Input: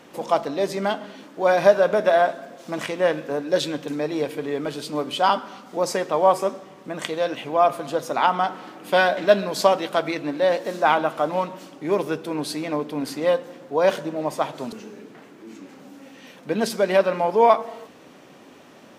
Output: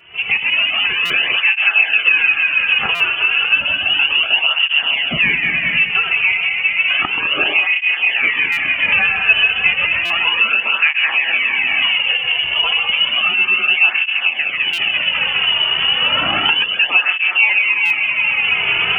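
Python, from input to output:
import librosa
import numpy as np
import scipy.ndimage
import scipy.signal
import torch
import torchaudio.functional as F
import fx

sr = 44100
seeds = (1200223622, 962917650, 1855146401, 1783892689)

p1 = fx.reverse_delay_fb(x, sr, ms=102, feedback_pct=75, wet_db=-6.0)
p2 = fx.recorder_agc(p1, sr, target_db=-9.0, rise_db_per_s=50.0, max_gain_db=30)
p3 = 10.0 ** (-11.0 / 20.0) * np.tanh(p2 / 10.0 ** (-11.0 / 20.0))
p4 = p2 + F.gain(torch.from_numpy(p3), -3.0).numpy()
p5 = scipy.signal.sosfilt(scipy.signal.butter(2, 91.0, 'highpass', fs=sr, output='sos'), p4)
p6 = fx.freq_invert(p5, sr, carrier_hz=3200)
p7 = fx.dynamic_eq(p6, sr, hz=1100.0, q=1.1, threshold_db=-28.0, ratio=4.0, max_db=4)
p8 = p7 + fx.echo_single(p7, sr, ms=130, db=-8.0, dry=0)
p9 = fx.buffer_glitch(p8, sr, at_s=(1.05, 2.95, 8.52, 10.05, 14.73, 17.85), block=256, repeats=8)
p10 = fx.flanger_cancel(p9, sr, hz=0.32, depth_ms=3.9)
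y = F.gain(torch.from_numpy(p10), -1.0).numpy()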